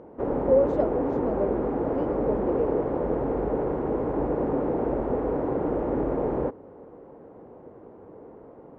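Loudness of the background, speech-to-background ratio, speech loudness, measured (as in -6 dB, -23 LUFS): -27.0 LUFS, -1.5 dB, -28.5 LUFS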